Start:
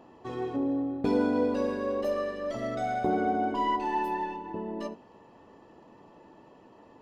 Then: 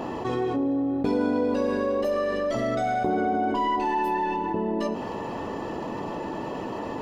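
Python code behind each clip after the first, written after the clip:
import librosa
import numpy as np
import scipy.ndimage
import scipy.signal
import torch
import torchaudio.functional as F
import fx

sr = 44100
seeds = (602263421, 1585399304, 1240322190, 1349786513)

y = fx.env_flatten(x, sr, amount_pct=70)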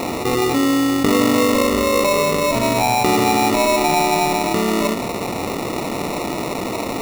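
y = fx.sample_hold(x, sr, seeds[0], rate_hz=1600.0, jitter_pct=0)
y = y * 10.0 ** (8.5 / 20.0)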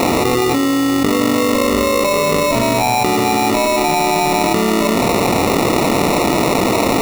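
y = fx.env_flatten(x, sr, amount_pct=100)
y = y * 10.0 ** (-1.0 / 20.0)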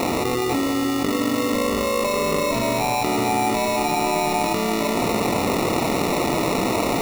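y = x + 10.0 ** (-6.5 / 20.0) * np.pad(x, (int(497 * sr / 1000.0), 0))[:len(x)]
y = y * 10.0 ** (-7.5 / 20.0)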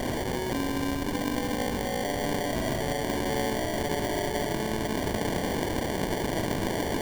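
y = fx.rattle_buzz(x, sr, strikes_db=-29.0, level_db=-13.0)
y = fx.sample_hold(y, sr, seeds[1], rate_hz=1300.0, jitter_pct=0)
y = y * 10.0 ** (-8.0 / 20.0)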